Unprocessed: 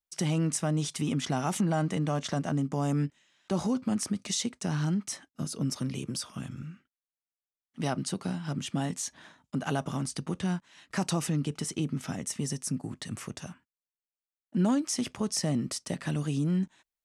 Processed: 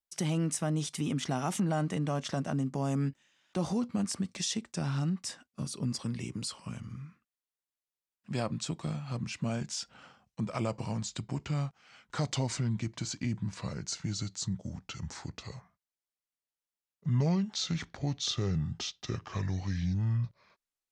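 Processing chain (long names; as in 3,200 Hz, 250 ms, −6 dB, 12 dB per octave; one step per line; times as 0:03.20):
gliding playback speed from 102% → 61%
level −2.5 dB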